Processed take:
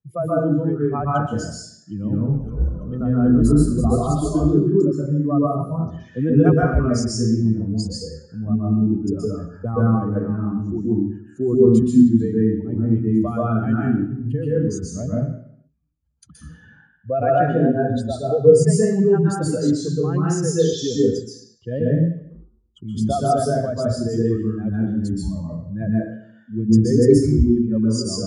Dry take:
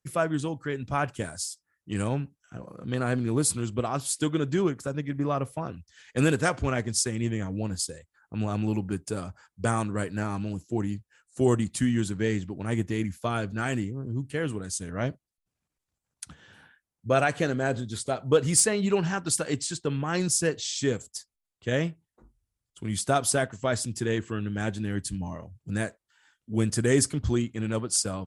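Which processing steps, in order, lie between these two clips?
expanding power law on the bin magnitudes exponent 2.2
0:01.97–0:04.37: echo with shifted repeats 332 ms, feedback 34%, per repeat −74 Hz, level −6 dB
convolution reverb RT60 0.70 s, pre-delay 120 ms, DRR −6 dB
level −7.5 dB

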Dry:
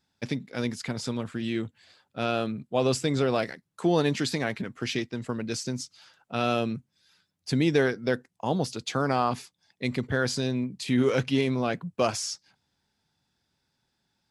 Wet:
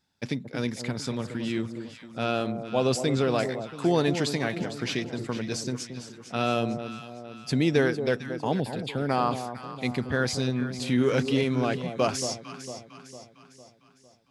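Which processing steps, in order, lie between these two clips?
0:08.60–0:09.09: phaser with its sweep stopped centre 2,600 Hz, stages 4
delay that swaps between a low-pass and a high-pass 227 ms, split 950 Hz, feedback 69%, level −8.5 dB

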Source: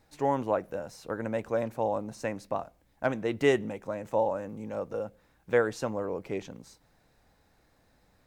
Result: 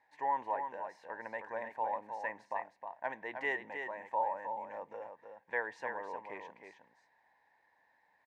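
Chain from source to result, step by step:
in parallel at −2 dB: brickwall limiter −23 dBFS, peak gain reduction 11 dB
on the sum: pair of resonant band-passes 1,300 Hz, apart 0.93 octaves
single-tap delay 313 ms −7 dB

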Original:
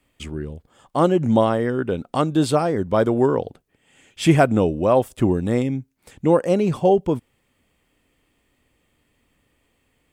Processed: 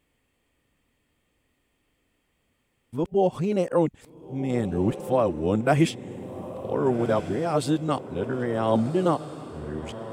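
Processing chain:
played backwards from end to start
feedback delay with all-pass diffusion 1,456 ms, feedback 40%, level −12 dB
level −5.5 dB

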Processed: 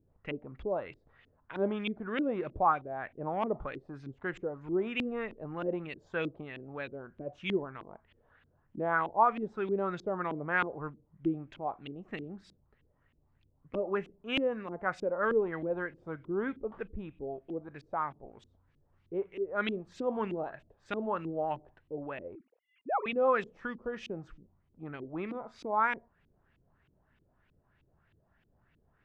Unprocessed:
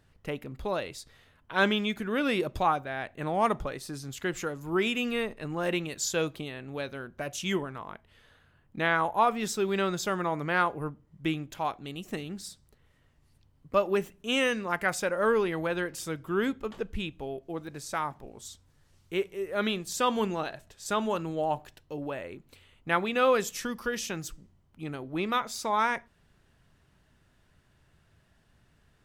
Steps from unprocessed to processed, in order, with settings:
0:22.35–0:23.06: three sine waves on the formant tracks
auto-filter low-pass saw up 3.2 Hz 290–3,000 Hz
level −6.5 dB

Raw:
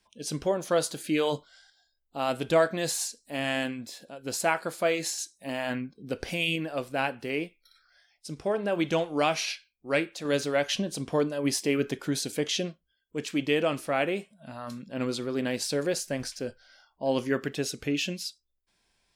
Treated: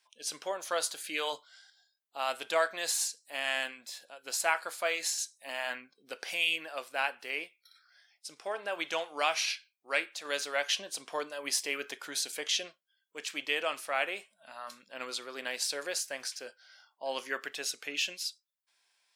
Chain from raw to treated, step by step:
high-pass filter 890 Hz 12 dB per octave

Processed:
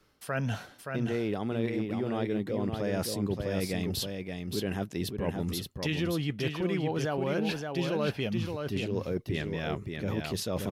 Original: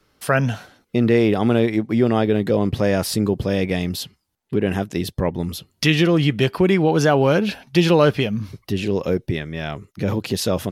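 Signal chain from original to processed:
reversed playback
downward compressor 5 to 1, threshold −25 dBFS, peak gain reduction 13.5 dB
reversed playback
single-tap delay 573 ms −5 dB
level −4 dB

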